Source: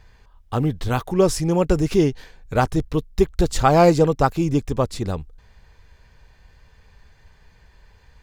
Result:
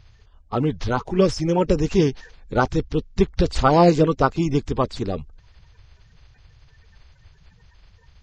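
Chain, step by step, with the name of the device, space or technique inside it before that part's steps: clip after many re-uploads (LPF 6100 Hz 24 dB/oct; bin magnitudes rounded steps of 30 dB)

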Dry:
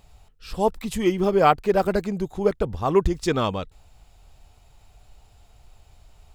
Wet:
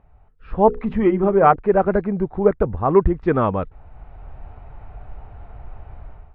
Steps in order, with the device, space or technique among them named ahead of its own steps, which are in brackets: 0.66–1.56 notches 60/120/180/240/300/360/420/480 Hz; action camera in a waterproof case (LPF 1800 Hz 24 dB/oct; AGC gain up to 16 dB; gain -1 dB; AAC 64 kbps 22050 Hz)

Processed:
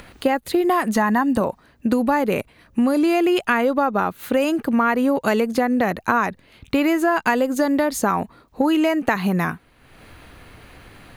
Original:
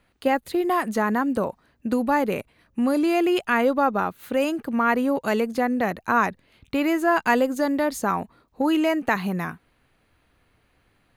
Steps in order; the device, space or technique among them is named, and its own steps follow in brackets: 0.96–1.41 comb 1.1 ms, depth 49%; upward and downward compression (upward compressor, threshold -40 dBFS; compressor, threshold -23 dBFS, peak gain reduction 9 dB); gain +8 dB

